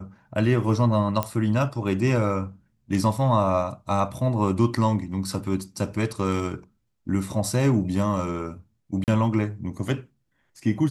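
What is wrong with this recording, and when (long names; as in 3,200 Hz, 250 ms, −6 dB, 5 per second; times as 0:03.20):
0:01.23: click −10 dBFS
0:09.04–0:09.08: drop-out 38 ms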